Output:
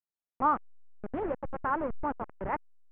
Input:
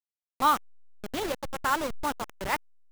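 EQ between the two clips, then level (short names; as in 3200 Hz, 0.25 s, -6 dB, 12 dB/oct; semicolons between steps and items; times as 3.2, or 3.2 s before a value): Gaussian blur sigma 5.6 samples; 0.0 dB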